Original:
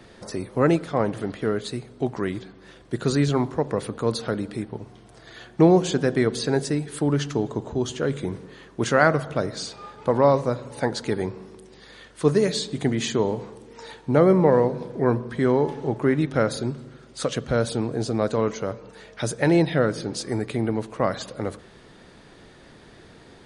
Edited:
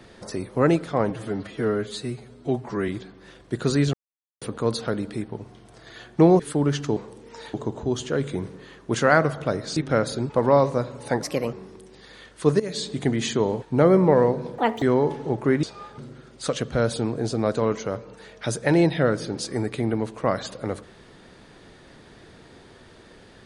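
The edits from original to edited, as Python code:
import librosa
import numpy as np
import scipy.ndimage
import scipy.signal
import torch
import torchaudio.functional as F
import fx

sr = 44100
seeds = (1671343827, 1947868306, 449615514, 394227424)

y = fx.edit(x, sr, fx.stretch_span(start_s=1.1, length_s=1.19, factor=1.5),
    fx.silence(start_s=3.34, length_s=0.48),
    fx.cut(start_s=5.8, length_s=1.06),
    fx.swap(start_s=9.66, length_s=0.35, other_s=16.21, other_length_s=0.53),
    fx.speed_span(start_s=10.94, length_s=0.38, speed=1.25),
    fx.fade_in_from(start_s=12.39, length_s=0.28, floor_db=-15.5),
    fx.move(start_s=13.41, length_s=0.57, to_s=7.43),
    fx.speed_span(start_s=14.94, length_s=0.46, speed=1.9), tone=tone)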